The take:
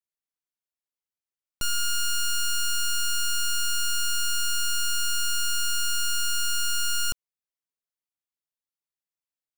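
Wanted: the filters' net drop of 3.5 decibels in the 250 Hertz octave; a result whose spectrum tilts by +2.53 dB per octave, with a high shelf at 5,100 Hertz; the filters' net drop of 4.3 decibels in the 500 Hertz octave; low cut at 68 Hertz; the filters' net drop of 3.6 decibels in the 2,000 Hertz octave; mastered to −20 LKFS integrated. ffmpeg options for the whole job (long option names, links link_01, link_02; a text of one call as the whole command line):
ffmpeg -i in.wav -af "highpass=68,equalizer=frequency=250:width_type=o:gain=-4,equalizer=frequency=500:width_type=o:gain=-4,equalizer=frequency=2000:width_type=o:gain=-7.5,highshelf=frequency=5100:gain=5.5,volume=4dB" out.wav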